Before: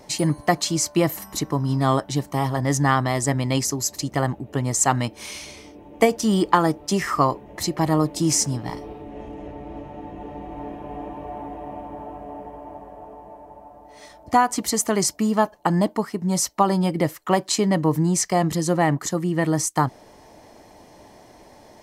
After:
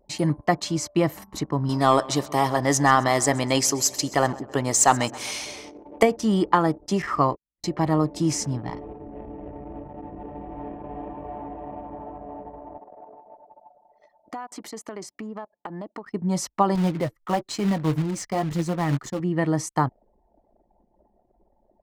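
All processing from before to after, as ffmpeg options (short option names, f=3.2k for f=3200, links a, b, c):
-filter_complex "[0:a]asettb=1/sr,asplit=3[a][b][c];[a]atrim=end=1.694[d];[b]atrim=start=1.69:end=6.03,asetpts=PTS-STARTPTS,afade=t=in:d=0.004:c=qsin,afade=t=out:st=4.336:d=0.004:c=qsin,bass=f=250:g=-11,treble=f=4k:g=7,acontrast=57,aecho=1:1:131|262|393|524|655:0.1|0.057|0.0325|0.0185|0.0106,atrim=end_sample=191394[e];[c]atrim=start=6.026[f];[d][e]acrossfade=d=0.004:c1=hsin:c2=qsin[g];[g][f]acrossfade=d=0.004:c1=qsin:c2=hsin,asettb=1/sr,asplit=3[h][i][j];[h]atrim=end=7.024[k];[i]atrim=start=7.02:end=7.64,asetpts=PTS-STARTPTS,afade=t=in:d=0.004:c=qsin,afade=t=out:st=0.616:d=0.004:c=qsin,acrossover=split=4800[l][m];[m]acompressor=threshold=-43dB:ratio=4:attack=1:release=60[n];[l][n]amix=inputs=2:normalize=0,agate=range=-39dB:threshold=-31dB:ratio=16:release=100:detection=peak[o];[j]atrim=start=7.636[p];[k][o]acrossfade=d=0.004:c1=hsin:c2=qsin[q];[q][p]acrossfade=d=0.004:c1=qsin:c2=hsin,asettb=1/sr,asplit=3[r][s][t];[r]atrim=end=12.784[u];[s]atrim=start=12.78:end=16.06,asetpts=PTS-STARTPTS,afade=t=in:d=0.004:c=qsin,afade=t=out:st=3.276:d=0.004:c=qsin,highpass=260,acompressor=threshold=-30dB:ratio=5:attack=3.2:release=140:knee=1:detection=peak[v];[t]atrim=start=16.056[w];[u][v]acrossfade=d=0.004:c1=hsin:c2=qsin[x];[x][w]acrossfade=d=0.004:c1=qsin:c2=hsin,asettb=1/sr,asplit=3[y][z][aa];[y]atrim=end=16.754[ab];[z]atrim=start=16.75:end=19.2,asetpts=PTS-STARTPTS,afade=t=in:d=0.004:c=qsin,afade=t=out:st=2.446:d=0.004:c=qsin,flanger=delay=4.1:depth=6.4:regen=29:speed=1:shape=triangular,lowshelf=f=66:g=12,acrusher=bits=3:mode=log:mix=0:aa=0.000001[ac];[aa]atrim=start=19.196[ad];[ab][ac]acrossfade=d=0.004:c1=hsin:c2=qsin[ae];[ae][ad]acrossfade=d=0.004:c1=qsin:c2=hsin,anlmdn=1,lowpass=f=3.2k:p=1,volume=-1.5dB"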